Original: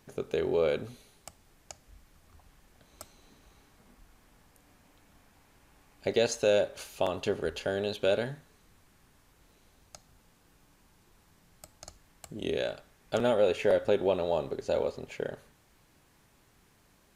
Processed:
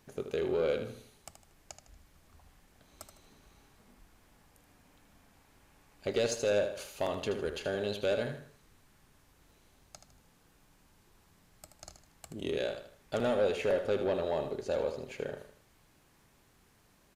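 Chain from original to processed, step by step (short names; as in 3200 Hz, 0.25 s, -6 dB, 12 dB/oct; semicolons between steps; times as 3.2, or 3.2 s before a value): soft clip -20.5 dBFS, distortion -16 dB; on a send: feedback echo 78 ms, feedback 36%, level -9 dB; on the sum: gain -2 dB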